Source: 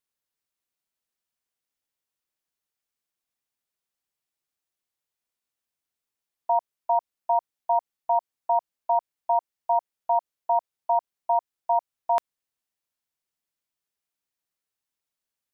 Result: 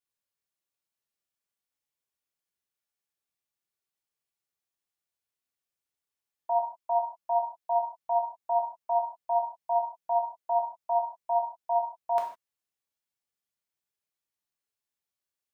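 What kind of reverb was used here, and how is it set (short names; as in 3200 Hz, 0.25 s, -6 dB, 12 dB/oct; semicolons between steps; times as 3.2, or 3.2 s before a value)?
non-linear reverb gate 0.18 s falling, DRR -1 dB; gain -7 dB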